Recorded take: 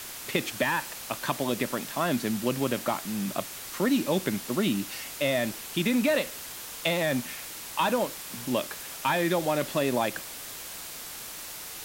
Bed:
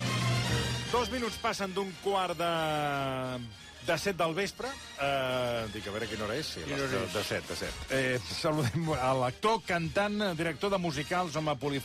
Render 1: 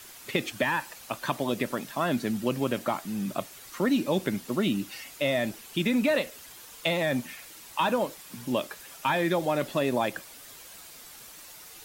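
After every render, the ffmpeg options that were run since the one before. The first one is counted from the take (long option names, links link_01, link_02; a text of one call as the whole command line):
ffmpeg -i in.wav -af "afftdn=noise_reduction=9:noise_floor=-40" out.wav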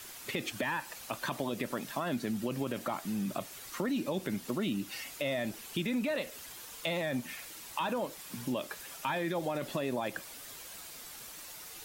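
ffmpeg -i in.wav -af "alimiter=limit=-19dB:level=0:latency=1:release=14,acompressor=threshold=-32dB:ratio=2.5" out.wav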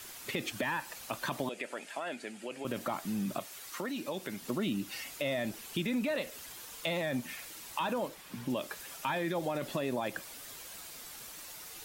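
ffmpeg -i in.wav -filter_complex "[0:a]asettb=1/sr,asplit=3[link_01][link_02][link_03];[link_01]atrim=end=1.494[link_04];[link_02]atrim=start=1.49:end=2.65,asetpts=PTS-STARTPTS,afade=type=in:duration=0.004:curve=qsin,afade=type=out:start_time=1.156:duration=0.004:curve=qsin,highpass=490,equalizer=frequency=1100:width_type=q:width=4:gain=-9,equalizer=frequency=2400:width_type=q:width=4:gain=4,equalizer=frequency=3900:width_type=q:width=4:gain=-6,equalizer=frequency=5700:width_type=q:width=4:gain=-8,lowpass=frequency=9300:width=0.5412,lowpass=frequency=9300:width=1.3066[link_05];[link_03]atrim=start=2.646[link_06];[link_04][link_05]acrossfade=duration=0.004:curve1=hsin:curve2=qsin[link_07];[link_07][link_06]acrossfade=duration=0.004:curve1=qsin:curve2=hsin,asettb=1/sr,asplit=3[link_08][link_09][link_10];[link_08]atrim=end=3.394[link_11];[link_09]atrim=start=3.39:end=4.42,asetpts=PTS-STARTPTS,afade=type=in:duration=0.004:curve=qsin,afade=type=out:start_time=1.026:duration=0.004:curve=qsin,lowshelf=frequency=330:gain=-10[link_12];[link_10]atrim=start=4.416[link_13];[link_11][link_12]acrossfade=duration=0.004:curve1=hsin:curve2=qsin[link_14];[link_14][link_13]acrossfade=duration=0.004:curve1=qsin:curve2=hsin,asettb=1/sr,asplit=3[link_15][link_16][link_17];[link_15]atrim=end=8.084[link_18];[link_16]atrim=start=8.08:end=8.5,asetpts=PTS-STARTPTS,afade=type=in:duration=0.004:curve=qsin,afade=type=out:start_time=0.416:duration=0.004:curve=qsin,acrossover=split=3700[link_19][link_20];[link_20]acompressor=threshold=-52dB:ratio=4:attack=1:release=60[link_21];[link_19][link_21]amix=inputs=2:normalize=0[link_22];[link_17]atrim=start=8.496[link_23];[link_18][link_22]acrossfade=duration=0.004:curve1=hsin:curve2=qsin[link_24];[link_24][link_23]acrossfade=duration=0.004:curve1=qsin:curve2=hsin" out.wav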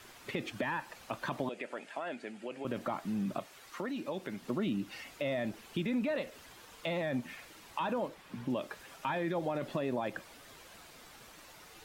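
ffmpeg -i in.wav -af "lowpass=frequency=2100:poles=1" out.wav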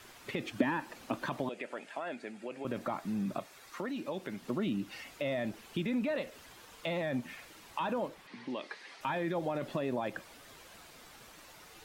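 ffmpeg -i in.wav -filter_complex "[0:a]asettb=1/sr,asplit=3[link_01][link_02][link_03];[link_01]atrim=end=0.584[link_04];[link_02]atrim=start=0.58:end=1.26,asetpts=PTS-STARTPTS,afade=type=in:duration=0.004:curve=qsin,afade=type=out:start_time=0.676:duration=0.004:curve=qsin,equalizer=frequency=280:width=1.5:gain=12[link_05];[link_03]atrim=start=1.256[link_06];[link_04][link_05]acrossfade=duration=0.004:curve1=hsin:curve2=qsin[link_07];[link_07][link_06]acrossfade=duration=0.004:curve1=qsin:curve2=hsin,asettb=1/sr,asplit=3[link_08][link_09][link_10];[link_08]atrim=end=2.004[link_11];[link_09]atrim=start=2:end=3.77,asetpts=PTS-STARTPTS,afade=type=in:duration=0.004:curve=qsin,afade=type=out:start_time=1.766:duration=0.004:curve=qsin,bandreject=frequency=3000:width=12[link_12];[link_10]atrim=start=3.766[link_13];[link_11][link_12]acrossfade=duration=0.004:curve1=hsin:curve2=qsin[link_14];[link_14][link_13]acrossfade=duration=0.004:curve1=qsin:curve2=hsin,asettb=1/sr,asplit=3[link_15][link_16][link_17];[link_15]atrim=end=8.274[link_18];[link_16]atrim=start=8.27:end=9.01,asetpts=PTS-STARTPTS,afade=type=in:duration=0.004:curve=qsin,afade=type=out:start_time=0.736:duration=0.004:curve=qsin,highpass=310,equalizer=frequency=600:width_type=q:width=4:gain=-6,equalizer=frequency=1400:width_type=q:width=4:gain=-4,equalizer=frequency=2000:width_type=q:width=4:gain=9,equalizer=frequency=4300:width_type=q:width=4:gain=7,equalizer=frequency=7400:width_type=q:width=4:gain=-8,lowpass=frequency=8300:width=0.5412,lowpass=frequency=8300:width=1.3066[link_19];[link_17]atrim=start=9.006[link_20];[link_18][link_19]acrossfade=duration=0.004:curve1=hsin:curve2=qsin[link_21];[link_21][link_20]acrossfade=duration=0.004:curve1=qsin:curve2=hsin" out.wav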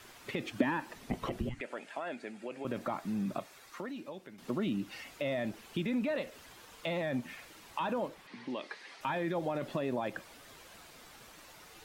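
ffmpeg -i in.wav -filter_complex "[0:a]asettb=1/sr,asplit=3[link_01][link_02][link_03];[link_01]atrim=end=0.954[link_04];[link_02]atrim=start=0.95:end=1.61,asetpts=PTS-STARTPTS,afade=type=in:duration=0.004:curve=qsin,afade=type=out:start_time=0.656:duration=0.004:curve=qsin,afreqshift=-490[link_05];[link_03]atrim=start=1.606[link_06];[link_04][link_05]acrossfade=duration=0.004:curve1=hsin:curve2=qsin[link_07];[link_07][link_06]acrossfade=duration=0.004:curve1=qsin:curve2=hsin,asplit=2[link_08][link_09];[link_08]atrim=end=4.38,asetpts=PTS-STARTPTS,afade=type=out:start_time=3.5:duration=0.88:silence=0.237137[link_10];[link_09]atrim=start=4.38,asetpts=PTS-STARTPTS,afade=type=in:duration=0.004:curve=hsin:silence=0.237137[link_11];[link_10][link_11]concat=n=2:v=0:a=1" out.wav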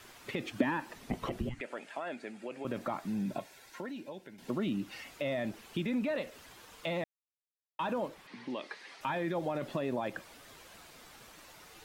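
ffmpeg -i in.wav -filter_complex "[0:a]asettb=1/sr,asplit=3[link_01][link_02][link_03];[link_01]atrim=end=3.084[link_04];[link_02]atrim=start=3.08:end=4.5,asetpts=PTS-STARTPTS,afade=type=in:duration=0.004:curve=qsin,afade=type=out:start_time=1.416:duration=0.004:curve=qsin,asuperstop=centerf=1200:order=12:qfactor=5.6[link_05];[link_03]atrim=start=4.496[link_06];[link_04][link_05]acrossfade=duration=0.004:curve1=hsin:curve2=qsin[link_07];[link_07][link_06]acrossfade=duration=0.004:curve1=qsin:curve2=hsin,asplit=3[link_08][link_09][link_10];[link_08]atrim=end=7.04,asetpts=PTS-STARTPTS,afade=type=out:start_time=7.036:duration=0.004:curve=hsin[link_11];[link_09]atrim=start=7.04:end=7.79,asetpts=PTS-STARTPTS,volume=0[link_12];[link_10]atrim=start=7.79,asetpts=PTS-STARTPTS,afade=type=in:duration=0.004:curve=hsin[link_13];[link_11][link_12][link_13]concat=n=3:v=0:a=1" out.wav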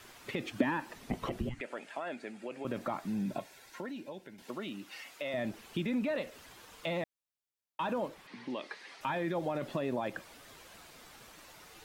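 ffmpeg -i in.wav -filter_complex "[0:a]asettb=1/sr,asplit=3[link_01][link_02][link_03];[link_01]atrim=end=4.424[link_04];[link_02]atrim=start=4.42:end=5.34,asetpts=PTS-STARTPTS,afade=type=in:duration=0.004:curve=qsin,afade=type=out:start_time=0.916:duration=0.004:curve=qsin,highpass=frequency=650:poles=1[link_05];[link_03]atrim=start=5.336[link_06];[link_04][link_05]acrossfade=duration=0.004:curve1=hsin:curve2=qsin[link_07];[link_07][link_06]acrossfade=duration=0.004:curve1=qsin:curve2=hsin" out.wav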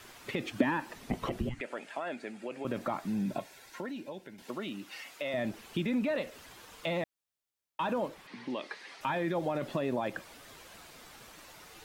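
ffmpeg -i in.wav -af "volume=2dB" out.wav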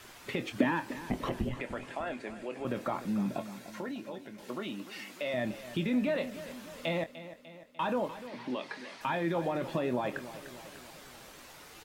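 ffmpeg -i in.wav -filter_complex "[0:a]asplit=2[link_01][link_02];[link_02]adelay=24,volume=-10dB[link_03];[link_01][link_03]amix=inputs=2:normalize=0,aecho=1:1:298|596|894|1192|1490|1788:0.2|0.114|0.0648|0.037|0.0211|0.012" out.wav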